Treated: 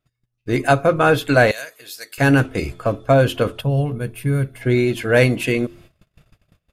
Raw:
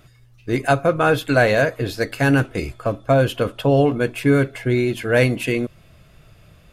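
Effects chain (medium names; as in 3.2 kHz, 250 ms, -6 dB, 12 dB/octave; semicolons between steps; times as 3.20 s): de-hum 87.16 Hz, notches 5; gate -45 dBFS, range -29 dB; 1.51–2.18 s: differentiator; 3.60–4.62 s: time-frequency box 220–8600 Hz -11 dB; trim +2 dB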